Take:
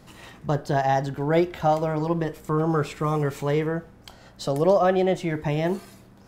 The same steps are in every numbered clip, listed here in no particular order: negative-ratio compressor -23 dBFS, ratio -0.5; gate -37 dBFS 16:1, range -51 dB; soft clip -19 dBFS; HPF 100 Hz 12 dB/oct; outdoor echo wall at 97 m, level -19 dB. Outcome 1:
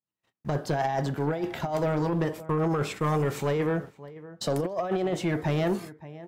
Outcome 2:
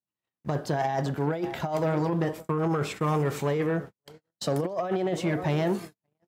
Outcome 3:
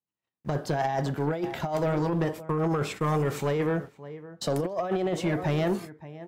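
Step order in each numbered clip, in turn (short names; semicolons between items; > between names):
HPF > negative-ratio compressor > gate > outdoor echo > soft clip; outdoor echo > gate > negative-ratio compressor > soft clip > HPF; gate > outdoor echo > negative-ratio compressor > HPF > soft clip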